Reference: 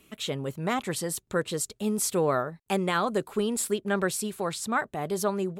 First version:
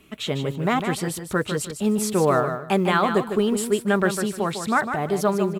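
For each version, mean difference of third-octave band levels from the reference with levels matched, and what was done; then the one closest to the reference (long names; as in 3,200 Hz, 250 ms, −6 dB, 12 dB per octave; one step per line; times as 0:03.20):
5.0 dB: noise that follows the level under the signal 32 dB
bass and treble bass +1 dB, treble −7 dB
notch filter 510 Hz, Q 12
repeating echo 152 ms, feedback 20%, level −8 dB
level +6 dB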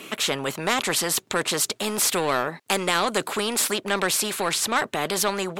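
8.5 dB: high-pass filter 280 Hz 12 dB per octave
high-shelf EQ 7,800 Hz −11 dB
in parallel at −11.5 dB: soft clipping −28.5 dBFS, distortion −8 dB
on the sum: every bin compressed towards the loudest bin 2 to 1
level +7 dB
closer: first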